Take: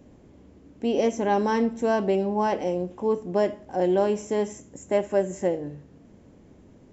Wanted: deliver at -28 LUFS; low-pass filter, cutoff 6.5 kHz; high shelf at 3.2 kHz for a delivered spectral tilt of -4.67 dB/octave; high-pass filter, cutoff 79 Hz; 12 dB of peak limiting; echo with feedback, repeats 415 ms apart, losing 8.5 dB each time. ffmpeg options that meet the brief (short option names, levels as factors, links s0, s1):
-af "highpass=79,lowpass=6500,highshelf=f=3200:g=-7,alimiter=limit=0.0794:level=0:latency=1,aecho=1:1:415|830|1245|1660:0.376|0.143|0.0543|0.0206,volume=1.5"